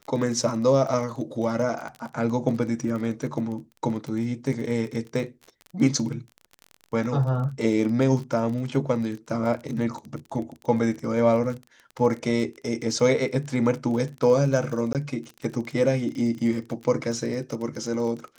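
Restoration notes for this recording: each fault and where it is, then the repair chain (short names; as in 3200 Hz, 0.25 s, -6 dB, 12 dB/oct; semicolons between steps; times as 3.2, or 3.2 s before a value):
crackle 29/s -32 dBFS
14.93–14.95 gap 18 ms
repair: de-click; interpolate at 14.93, 18 ms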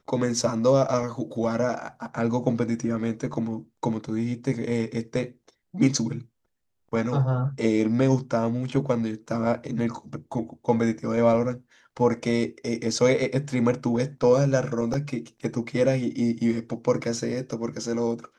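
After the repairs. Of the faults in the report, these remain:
none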